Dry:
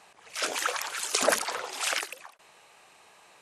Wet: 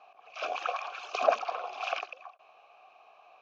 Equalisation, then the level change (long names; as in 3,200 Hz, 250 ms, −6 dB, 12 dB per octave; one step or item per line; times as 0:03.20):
formant filter a
Butterworth low-pass 6,500 Hz 72 dB per octave
low-shelf EQ 84 Hz +5.5 dB
+8.5 dB